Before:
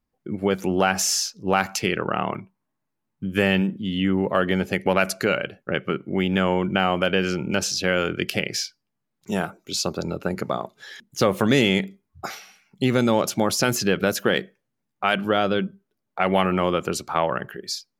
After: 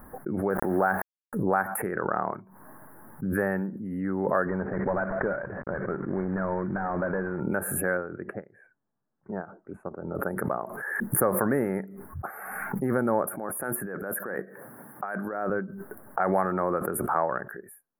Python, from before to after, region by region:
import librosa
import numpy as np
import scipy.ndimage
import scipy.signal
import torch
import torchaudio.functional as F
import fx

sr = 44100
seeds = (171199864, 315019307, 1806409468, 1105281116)

y = fx.chain(x, sr, fx.lowpass(hz=2300.0, slope=24),
    fx.sample_gate(floor_db=-34.5),
    fx.sustainer(db_per_s=45.0), at=(0.5, 1.33))
y = fx.chain(y, sr, fx.cvsd(bps=16000),
    fx.low_shelf(hz=160.0, db=7.0), at=(4.46, 7.4))
y = fx.chain(y, sr, fx.spacing_loss(db_at_10k=37),
    fx.upward_expand(threshold_db=-44.0, expansion=2.5), at=(7.97, 10.15))
y = fx.chain(y, sr, fx.highpass(hz=140.0, slope=12),
    fx.over_compress(threshold_db=-27.0, ratio=-1.0), at=(13.27, 15.5))
y = scipy.signal.sosfilt(scipy.signal.cheby1(4, 1.0, [1700.0, 10000.0], 'bandstop', fs=sr, output='sos'), y)
y = fx.low_shelf(y, sr, hz=310.0, db=-8.0)
y = fx.pre_swell(y, sr, db_per_s=33.0)
y = F.gain(torch.from_numpy(y), -2.5).numpy()